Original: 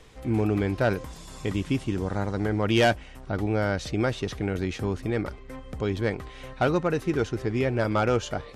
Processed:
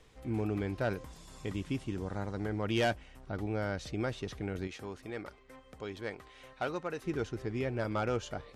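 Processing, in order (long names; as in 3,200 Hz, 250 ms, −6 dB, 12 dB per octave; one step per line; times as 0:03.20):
0:04.67–0:07.04: low-shelf EQ 270 Hz −12 dB
level −9 dB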